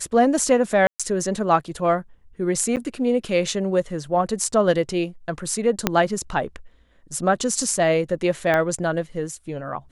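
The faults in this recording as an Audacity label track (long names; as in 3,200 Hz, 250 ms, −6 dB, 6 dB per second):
0.870000	1.000000	drop-out 126 ms
2.760000	2.770000	drop-out 8.6 ms
5.870000	5.870000	click −2 dBFS
8.540000	8.540000	click −10 dBFS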